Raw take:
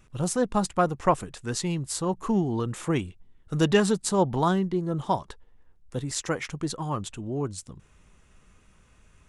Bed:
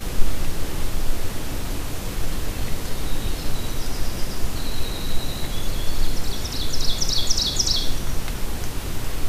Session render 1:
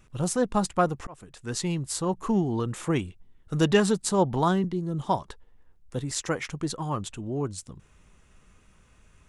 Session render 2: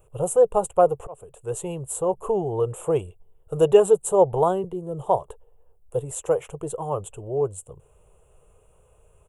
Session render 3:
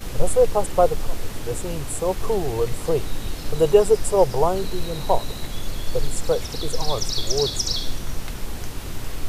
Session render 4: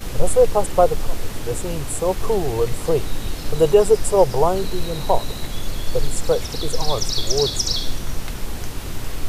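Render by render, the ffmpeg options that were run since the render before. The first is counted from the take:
-filter_complex "[0:a]asettb=1/sr,asplit=3[a][b][c];[a]atrim=end=4.644[d];[b]atrim=start=4.64:end=5.07,asetpts=PTS-STARTPTS,afade=t=in:d=0.004:c=qsin,afade=t=out:st=0.426:d=0.004:c=qsin,acrossover=split=340|3000[e][f][g];[f]acompressor=threshold=-45dB:ratio=2.5:attack=3.2:release=140:knee=2.83:detection=peak[h];[e][h][g]amix=inputs=3:normalize=0[i];[c]atrim=start=5.066[j];[d][i]acrossfade=d=0.004:c1=hsin:c2=qsin[k];[k][j]acrossfade=d=0.004:c1=qsin:c2=hsin,asplit=2[l][m];[l]atrim=end=1.07,asetpts=PTS-STARTPTS,afade=t=out:st=1.066:d=0.004:c=hsin[n];[m]atrim=start=1.07,asetpts=PTS-STARTPTS,afade=t=in:d=0.55[o];[n][o]concat=n=2:v=0:a=1"
-af "firequalizer=gain_entry='entry(130,0);entry(240,-17);entry(440,12);entry(1900,-17);entry(2800,-4);entry(4700,-27);entry(7500,1);entry(12000,7)':delay=0.05:min_phase=1"
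-filter_complex "[1:a]volume=-3.5dB[a];[0:a][a]amix=inputs=2:normalize=0"
-af "volume=2.5dB,alimiter=limit=-3dB:level=0:latency=1"

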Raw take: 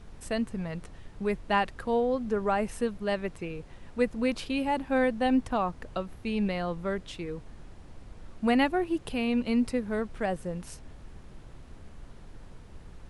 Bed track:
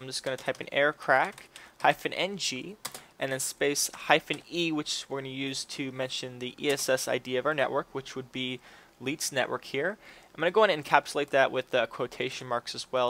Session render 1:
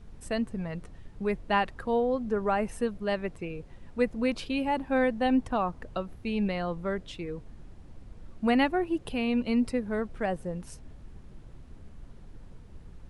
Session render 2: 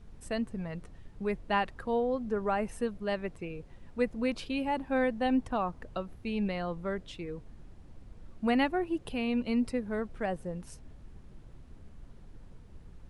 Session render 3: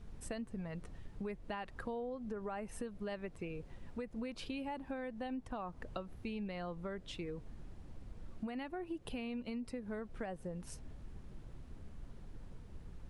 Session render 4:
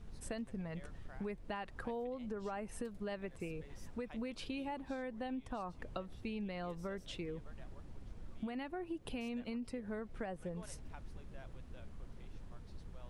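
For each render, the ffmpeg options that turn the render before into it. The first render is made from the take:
-af "afftdn=nr=6:nf=-49"
-af "volume=-3dB"
-af "alimiter=level_in=0.5dB:limit=-24dB:level=0:latency=1:release=168,volume=-0.5dB,acompressor=threshold=-39dB:ratio=6"
-filter_complex "[1:a]volume=-34dB[a];[0:a][a]amix=inputs=2:normalize=0"

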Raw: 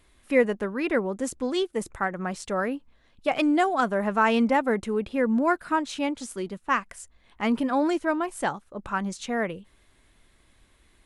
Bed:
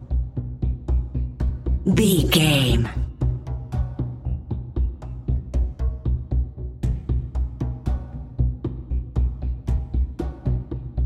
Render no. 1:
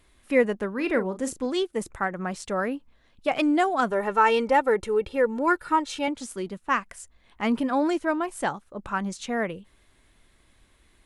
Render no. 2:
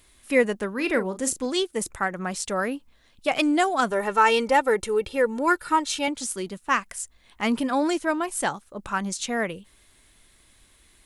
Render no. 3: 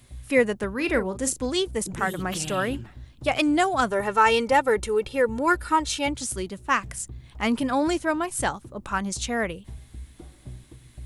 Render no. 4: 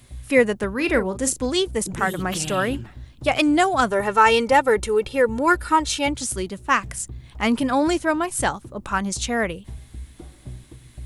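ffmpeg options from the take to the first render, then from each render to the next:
-filter_complex "[0:a]asettb=1/sr,asplit=3[a][b][c];[a]atrim=end=0.744[d];[b]atrim=start=0.74:end=1.46,asetpts=PTS-STARTPTS,afade=t=in:d=0.004:c=qsin,afade=t=out:st=0.716:d=0.004:c=qsin,asplit=2[e][f];[f]adelay=38,volume=-10.5dB[g];[e][g]amix=inputs=2:normalize=0,atrim=end_sample=31752[h];[c]atrim=start=1.456[i];[d][h]acrossfade=d=0.004:c1=hsin:c2=qsin[j];[j][i]acrossfade=d=0.004:c1=qsin:c2=hsin,asettb=1/sr,asplit=3[k][l][m];[k]atrim=end=3.904[n];[l]atrim=start=3.9:end=6.08,asetpts=PTS-STARTPTS,afade=t=in:d=0.004:c=qsin,afade=t=out:st=2.176:d=0.004:c=qsin,aecho=1:1:2.2:0.66,atrim=end_sample=96138[o];[m]atrim=start=6.076[p];[n][o]acrossfade=d=0.004:c1=hsin:c2=qsin[q];[q][p]acrossfade=d=0.004:c1=qsin:c2=hsin"
-af "highshelf=f=3.4k:g=11.5"
-filter_complex "[1:a]volume=-17.5dB[a];[0:a][a]amix=inputs=2:normalize=0"
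-af "volume=3.5dB"

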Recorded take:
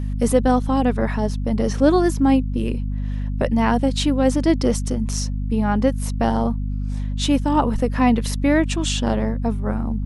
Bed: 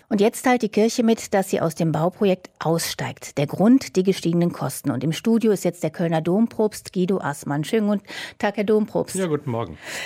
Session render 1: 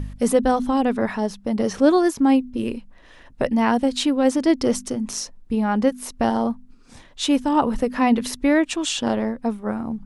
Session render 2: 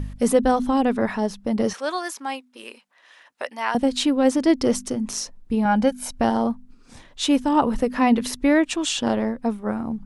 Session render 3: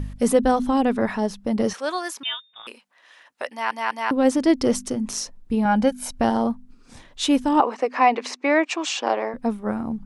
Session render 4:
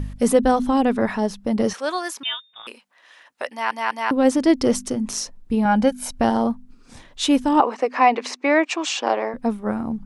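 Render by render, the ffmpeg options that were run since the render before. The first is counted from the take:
-af "bandreject=f=50:t=h:w=4,bandreject=f=100:t=h:w=4,bandreject=f=150:t=h:w=4,bandreject=f=200:t=h:w=4,bandreject=f=250:t=h:w=4"
-filter_complex "[0:a]asettb=1/sr,asplit=3[a][b][c];[a]atrim=end=1.734[d];[b]atrim=start=1.73:end=3.75,asetpts=PTS-STARTPTS,afade=t=in:d=0.004:c=qsin,afade=t=out:st=2.016:d=0.004:c=qsin,highpass=920[e];[c]atrim=start=3.746[f];[d][e]acrossfade=d=0.004:c1=hsin:c2=qsin[g];[g][f]acrossfade=d=0.004:c1=qsin:c2=hsin,asettb=1/sr,asplit=3[h][i][j];[h]atrim=end=5.654[k];[i]atrim=start=5.65:end=6.19,asetpts=PTS-STARTPTS,afade=t=in:d=0.004:c=qsin,afade=t=out:st=0.536:d=0.004:c=qsin,aecho=1:1:1.3:0.66,atrim=end_sample=23814[l];[j]atrim=start=6.186[m];[k][l]acrossfade=d=0.004:c1=hsin:c2=qsin[n];[n][m]acrossfade=d=0.004:c1=qsin:c2=hsin"
-filter_complex "[0:a]asettb=1/sr,asplit=3[a][b][c];[a]atrim=end=2.234[d];[b]atrim=start=2.23:end=2.67,asetpts=PTS-STARTPTS,afade=t=in:d=0.004:c=qsin,afade=t=out:st=0.436:d=0.004:c=qsin,lowpass=f=3.3k:t=q:w=0.5098,lowpass=f=3.3k:t=q:w=0.6013,lowpass=f=3.3k:t=q:w=0.9,lowpass=f=3.3k:t=q:w=2.563,afreqshift=-3900[e];[c]atrim=start=2.666[f];[d][e]acrossfade=d=0.004:c1=hsin:c2=qsin[g];[g][f]acrossfade=d=0.004:c1=qsin:c2=hsin,asettb=1/sr,asplit=3[h][i][j];[h]atrim=end=7.604[k];[i]atrim=start=7.6:end=9.34,asetpts=PTS-STARTPTS,afade=t=in:d=0.004:c=qsin,afade=t=out:st=1.736:d=0.004:c=qsin,highpass=f=340:w=0.5412,highpass=f=340:w=1.3066,equalizer=f=760:t=q:w=4:g=6,equalizer=f=1.1k:t=q:w=4:g=6,equalizer=f=2.3k:t=q:w=4:g=7,equalizer=f=3.4k:t=q:w=4:g=-5,lowpass=f=6.8k:w=0.5412,lowpass=f=6.8k:w=1.3066[l];[j]atrim=start=9.336[m];[k][l]acrossfade=d=0.004:c1=hsin:c2=qsin[n];[n][m]acrossfade=d=0.004:c1=qsin:c2=hsin,asplit=4[o][p][q][r];[o]atrim=end=3.712[s];[p]atrim=start=3.508:end=3.712[t];[q]atrim=start=3.508:end=3.712[u];[r]atrim=start=4.108[v];[s][t]acrossfade=d=0.004:c1=hsin:c2=hsin[w];[w][u]acrossfade=d=0.004:c1=hsin:c2=hsin[x];[x][v]acrossfade=d=0.004:c1=hsin:c2=hsin"
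-af "volume=1.5dB"

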